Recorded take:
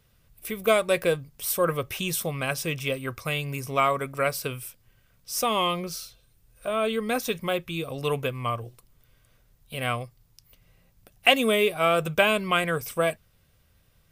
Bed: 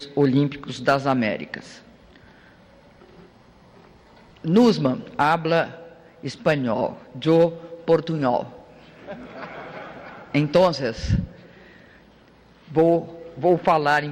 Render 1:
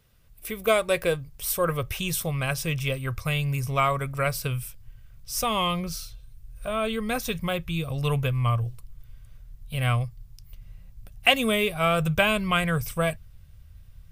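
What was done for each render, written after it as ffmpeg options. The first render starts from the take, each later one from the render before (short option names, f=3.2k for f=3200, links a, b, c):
-af "asubboost=boost=10:cutoff=100"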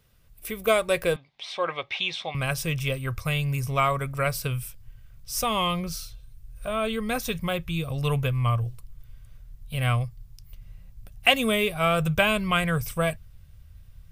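-filter_complex "[0:a]asettb=1/sr,asplit=3[a][b][c];[a]atrim=end=1.164[d];[b]atrim=start=1.16:end=2.35,asetpts=PTS-STARTPTS,afade=t=in:d=0.004:c=qsin,afade=t=out:st=1.186:d=0.004:c=qsin,highpass=390,equalizer=f=460:t=q:w=4:g=-6,equalizer=f=800:t=q:w=4:g=8,equalizer=f=1.4k:t=q:w=4:g=-5,equalizer=f=2.2k:t=q:w=4:g=8,equalizer=f=3.6k:t=q:w=4:g=8,lowpass=f=4.5k:w=0.5412,lowpass=f=4.5k:w=1.3066[e];[c]atrim=start=2.346[f];[d][e]acrossfade=d=0.004:c1=hsin:c2=qsin[g];[g][f]acrossfade=d=0.004:c1=qsin:c2=hsin"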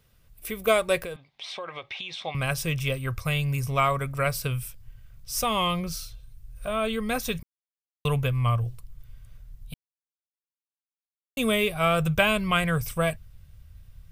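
-filter_complex "[0:a]asettb=1/sr,asplit=3[a][b][c];[a]atrim=end=1.004[d];[b]atrim=start=1:end=2.22,asetpts=PTS-STARTPTS,afade=t=in:d=0.004:c=qsin,afade=t=out:st=1.216:d=0.004:c=qsin,acompressor=threshold=-32dB:ratio=6:attack=3.2:release=140:knee=1:detection=peak[e];[c]atrim=start=2.216[f];[d][e]acrossfade=d=0.004:c1=hsin:c2=qsin[g];[g][f]acrossfade=d=0.004:c1=qsin:c2=hsin,asplit=5[h][i][j][k][l];[h]atrim=end=7.43,asetpts=PTS-STARTPTS,afade=t=out:st=7.426:d=0.004:c=hsin[m];[i]atrim=start=7.43:end=8.05,asetpts=PTS-STARTPTS,volume=0[n];[j]atrim=start=8.05:end=9.74,asetpts=PTS-STARTPTS,afade=t=in:d=0.004:c=hsin,afade=t=out:st=1.686:d=0.004:c=hsin[o];[k]atrim=start=9.74:end=11.37,asetpts=PTS-STARTPTS,volume=0[p];[l]atrim=start=11.37,asetpts=PTS-STARTPTS,afade=t=in:d=0.004:c=hsin[q];[m][n][o][p][q]concat=n=5:v=0:a=1"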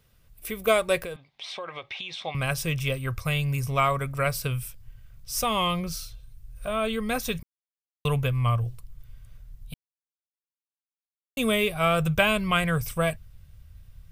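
-af anull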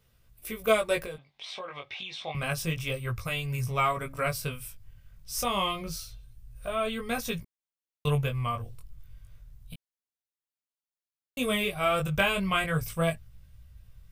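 -af "flanger=delay=16.5:depth=4.7:speed=0.29"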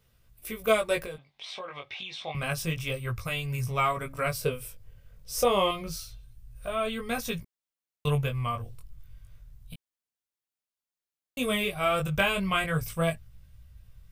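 -filter_complex "[0:a]asettb=1/sr,asplit=3[a][b][c];[a]atrim=end=4.404[d];[b]atrim=start=4.4:end=5.71,asetpts=PTS-STARTPTS,afade=t=in:d=0.004:c=qsin,afade=t=out:st=1.306:d=0.004:c=qsin,equalizer=f=470:t=o:w=0.81:g=13[e];[c]atrim=start=5.706[f];[d][e]acrossfade=d=0.004:c1=hsin:c2=qsin[g];[g][f]acrossfade=d=0.004:c1=qsin:c2=hsin"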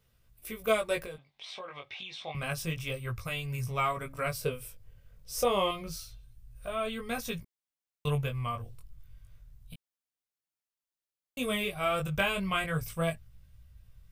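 -af "volume=-3.5dB"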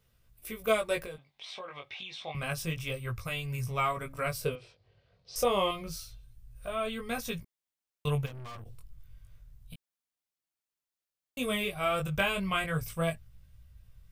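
-filter_complex "[0:a]asettb=1/sr,asplit=3[a][b][c];[a]atrim=end=4.554[d];[b]atrim=start=4.55:end=5.36,asetpts=PTS-STARTPTS,afade=t=in:d=0.004:c=qsin,afade=t=out:st=0.806:d=0.004:c=qsin,highpass=130,equalizer=f=150:t=q:w=4:g=-4,equalizer=f=250:t=q:w=4:g=-5,equalizer=f=370:t=q:w=4:g=6,equalizer=f=710:t=q:w=4:g=8,equalizer=f=1.5k:t=q:w=4:g=-3,equalizer=f=4.3k:t=q:w=4:g=7,lowpass=f=4.8k:w=0.5412,lowpass=f=4.8k:w=1.3066[e];[c]atrim=start=5.356[f];[d][e]acrossfade=d=0.004:c1=hsin:c2=qsin[g];[g][f]acrossfade=d=0.004:c1=qsin:c2=hsin,asplit=3[h][i][j];[h]afade=t=out:st=8.25:d=0.02[k];[i]aeval=exprs='(tanh(126*val(0)+0.55)-tanh(0.55))/126':c=same,afade=t=in:st=8.25:d=0.02,afade=t=out:st=8.65:d=0.02[l];[j]afade=t=in:st=8.65:d=0.02[m];[k][l][m]amix=inputs=3:normalize=0"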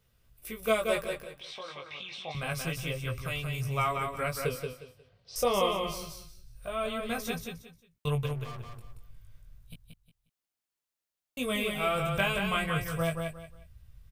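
-af "aecho=1:1:179|358|537:0.562|0.141|0.0351"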